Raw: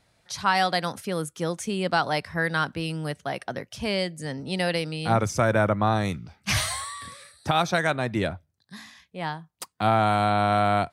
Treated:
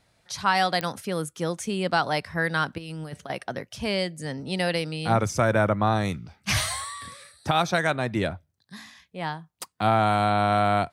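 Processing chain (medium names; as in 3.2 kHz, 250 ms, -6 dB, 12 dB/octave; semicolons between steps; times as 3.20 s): 2.78–3.30 s: compressor with a negative ratio -34 dBFS, ratio -0.5; clicks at 0.81 s, -12 dBFS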